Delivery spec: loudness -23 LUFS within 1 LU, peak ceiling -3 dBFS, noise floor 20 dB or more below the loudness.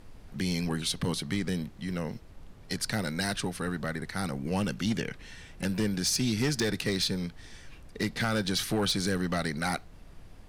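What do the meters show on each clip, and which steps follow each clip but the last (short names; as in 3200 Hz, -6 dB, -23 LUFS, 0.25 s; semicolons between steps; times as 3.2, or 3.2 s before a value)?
clipped 0.5%; flat tops at -21.0 dBFS; noise floor -50 dBFS; noise floor target -51 dBFS; loudness -30.5 LUFS; peak -21.0 dBFS; loudness target -23.0 LUFS
-> clip repair -21 dBFS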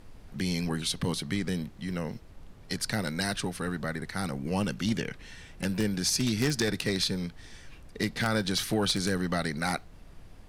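clipped 0.0%; noise floor -50 dBFS; noise floor target -51 dBFS
-> noise print and reduce 6 dB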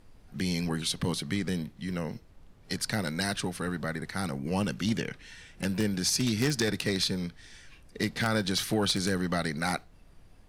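noise floor -56 dBFS; loudness -30.5 LUFS; peak -12.0 dBFS; loudness target -23.0 LUFS
-> gain +7.5 dB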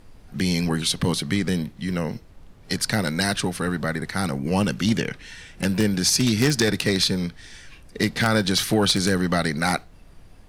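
loudness -23.0 LUFS; peak -4.5 dBFS; noise floor -48 dBFS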